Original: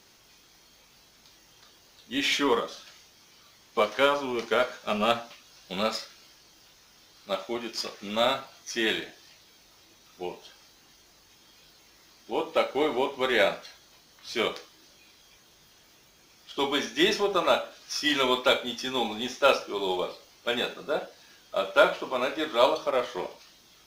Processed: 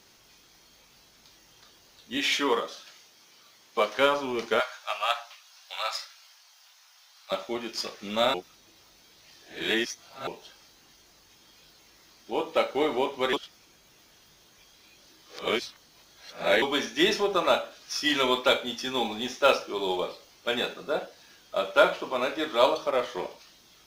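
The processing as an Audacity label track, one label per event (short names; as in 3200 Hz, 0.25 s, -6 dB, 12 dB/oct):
2.170000	3.950000	HPF 270 Hz 6 dB/oct
4.600000	7.320000	inverse Chebyshev high-pass stop band from 360 Hz
8.340000	10.270000	reverse
13.330000	16.620000	reverse
18.840000	19.660000	companded quantiser 8-bit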